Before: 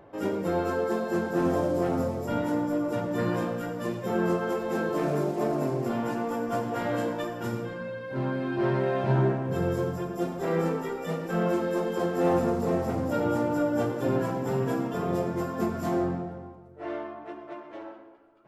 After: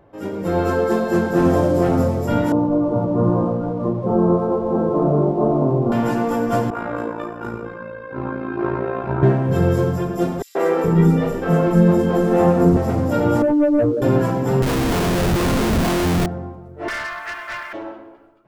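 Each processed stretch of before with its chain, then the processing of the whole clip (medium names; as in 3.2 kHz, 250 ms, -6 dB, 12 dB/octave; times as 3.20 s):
2.52–5.92 s: steep low-pass 1.2 kHz 48 dB/octave + hysteresis with a dead band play -56 dBFS
6.70–9.23 s: three-band isolator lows -14 dB, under 300 Hz, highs -16 dB, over 2 kHz + comb 0.8 ms, depth 42% + AM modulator 56 Hz, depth 50%
10.42–12.77 s: bass shelf 370 Hz +9.5 dB + three bands offset in time highs, mids, lows 130/420 ms, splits 350/4400 Hz
13.42–14.02 s: spectral contrast enhancement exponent 3.3 + high-pass 88 Hz 6 dB/octave + waveshaping leveller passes 1
14.62–16.26 s: high-pass 69 Hz 6 dB/octave + Schmitt trigger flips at -36.5 dBFS
16.88–17.73 s: resonant high-pass 1.7 kHz, resonance Q 2.3 + waveshaping leveller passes 3
whole clip: bass shelf 120 Hz +9.5 dB; level rider gain up to 10.5 dB; trim -1.5 dB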